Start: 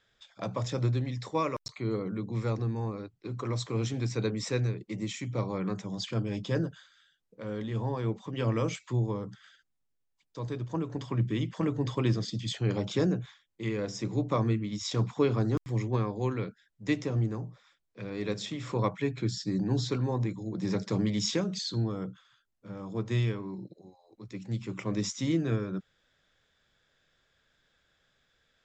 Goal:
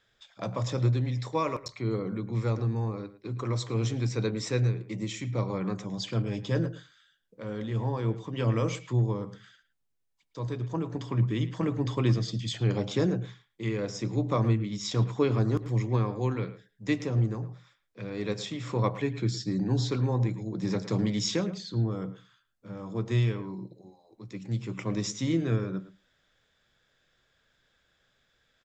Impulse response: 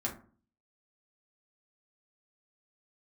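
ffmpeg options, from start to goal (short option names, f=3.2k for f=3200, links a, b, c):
-filter_complex "[0:a]asettb=1/sr,asplit=3[a][b][c];[a]atrim=end=21.504[d];[b]atrim=start=21.5:end=21.92,asetpts=PTS-STARTPTS,afade=t=in:d=0.004:c=qsin,afade=t=out:st=0.416:d=0.004:c=qsin,highshelf=f=2.6k:g=-11[e];[c]atrim=start=21.916[f];[d][e]acrossfade=d=0.004:c1=hsin:c2=qsin[g];[g][f]acrossfade=d=0.004:c1=qsin:c2=hsin,asplit=2[h][i];[i]adelay=110,highpass=300,lowpass=3.4k,asoftclip=type=hard:threshold=-22.5dB,volume=-14dB[j];[h][j]amix=inputs=2:normalize=0,asplit=2[k][l];[1:a]atrim=start_sample=2205,afade=t=out:st=0.14:d=0.01,atrim=end_sample=6615,asetrate=23373,aresample=44100[m];[l][m]afir=irnorm=-1:irlink=0,volume=-22.5dB[n];[k][n]amix=inputs=2:normalize=0"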